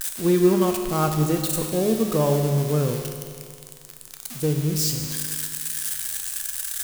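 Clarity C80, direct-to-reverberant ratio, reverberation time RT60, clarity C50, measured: 6.0 dB, 3.5 dB, 2.2 s, 5.0 dB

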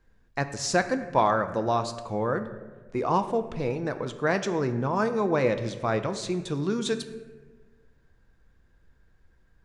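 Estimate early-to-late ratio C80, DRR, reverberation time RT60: 12.5 dB, 8.5 dB, 1.4 s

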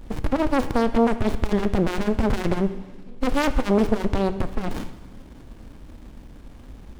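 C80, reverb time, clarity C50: 14.0 dB, 1.4 s, 13.0 dB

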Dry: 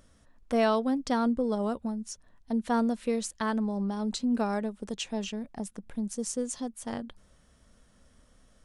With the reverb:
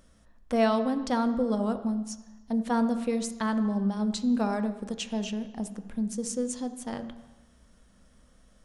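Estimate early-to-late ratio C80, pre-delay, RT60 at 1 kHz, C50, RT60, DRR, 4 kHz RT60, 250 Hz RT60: 13.5 dB, 3 ms, 1.1 s, 11.5 dB, 1.1 s, 9.0 dB, 1.2 s, 1.0 s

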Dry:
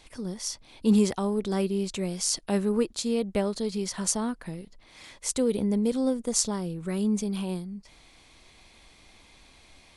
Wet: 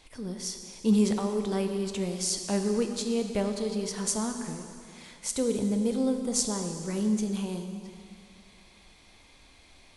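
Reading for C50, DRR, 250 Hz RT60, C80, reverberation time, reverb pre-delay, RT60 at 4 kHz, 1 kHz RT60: 6.0 dB, 5.0 dB, 2.4 s, 7.0 dB, 2.5 s, 10 ms, 2.3 s, 2.5 s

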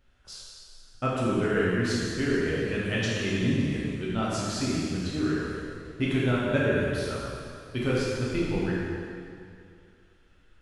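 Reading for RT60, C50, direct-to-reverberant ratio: 2.4 s, -2.5 dB, -7.5 dB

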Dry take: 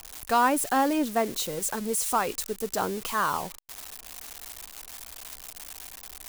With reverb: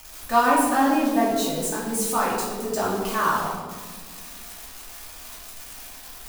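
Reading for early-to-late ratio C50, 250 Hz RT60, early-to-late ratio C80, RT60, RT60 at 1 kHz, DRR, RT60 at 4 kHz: 1.5 dB, 2.4 s, 3.5 dB, 1.6 s, 1.3 s, -7.0 dB, 0.90 s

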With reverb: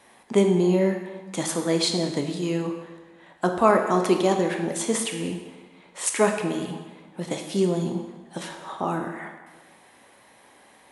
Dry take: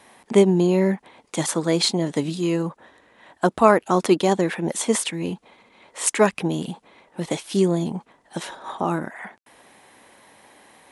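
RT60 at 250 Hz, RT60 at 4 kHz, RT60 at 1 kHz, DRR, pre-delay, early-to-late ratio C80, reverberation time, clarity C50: 1.3 s, 1.1 s, 1.4 s, 3.5 dB, 7 ms, 8.0 dB, 1.3 s, 6.5 dB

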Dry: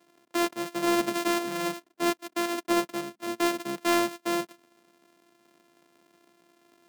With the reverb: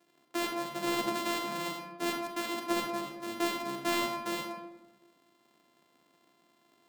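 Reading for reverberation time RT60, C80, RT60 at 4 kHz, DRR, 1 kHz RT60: 1.1 s, 6.5 dB, 0.60 s, 2.0 dB, 1.0 s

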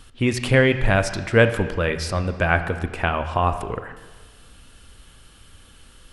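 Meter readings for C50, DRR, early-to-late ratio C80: 11.0 dB, 9.0 dB, 12.5 dB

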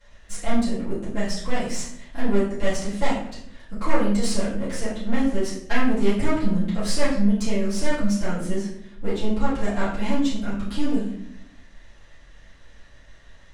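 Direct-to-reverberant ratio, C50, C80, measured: -13.5 dB, 3.0 dB, 7.5 dB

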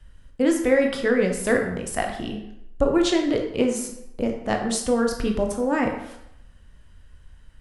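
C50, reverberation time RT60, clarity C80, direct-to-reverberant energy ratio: 6.0 dB, 0.80 s, 8.5 dB, 2.5 dB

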